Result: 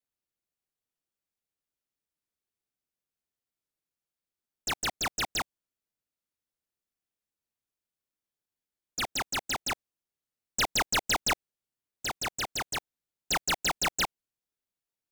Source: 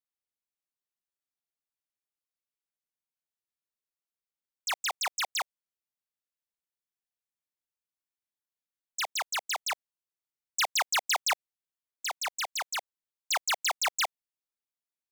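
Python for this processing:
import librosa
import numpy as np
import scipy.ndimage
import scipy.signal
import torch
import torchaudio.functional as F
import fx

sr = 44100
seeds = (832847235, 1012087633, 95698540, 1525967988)

p1 = fx.sample_hold(x, sr, seeds[0], rate_hz=1100.0, jitter_pct=0)
p2 = x + F.gain(torch.from_numpy(p1), -10.0).numpy()
y = fx.record_warp(p2, sr, rpm=45.0, depth_cents=160.0)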